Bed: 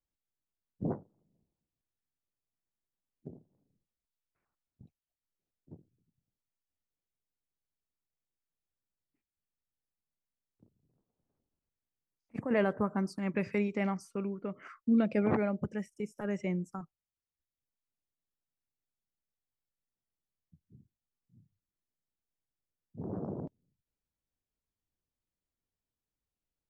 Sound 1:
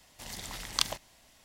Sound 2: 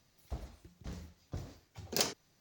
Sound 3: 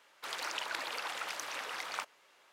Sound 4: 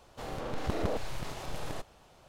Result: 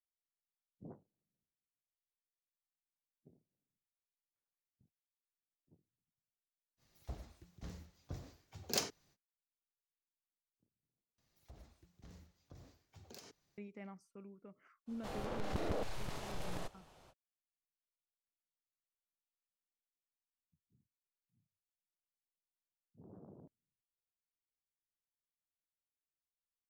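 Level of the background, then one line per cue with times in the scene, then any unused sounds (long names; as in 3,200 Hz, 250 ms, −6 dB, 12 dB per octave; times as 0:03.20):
bed −18.5 dB
0:06.77: mix in 2 −4 dB, fades 0.05 s
0:11.18: overwrite with 2 −10 dB + downward compressor, threshold −41 dBFS
0:14.86: mix in 4 −4.5 dB, fades 0.05 s + soft clipping −23.5 dBFS
not used: 1, 3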